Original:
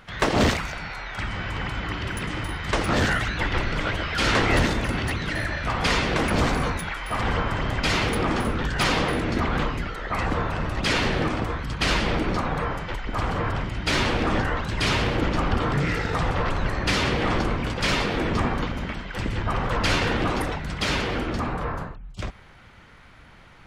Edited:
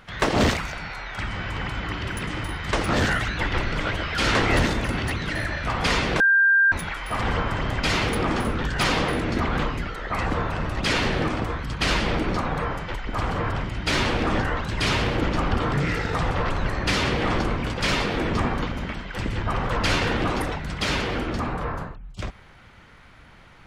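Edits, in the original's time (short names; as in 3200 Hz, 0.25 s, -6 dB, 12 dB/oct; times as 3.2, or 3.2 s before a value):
6.2–6.72 bleep 1590 Hz -14 dBFS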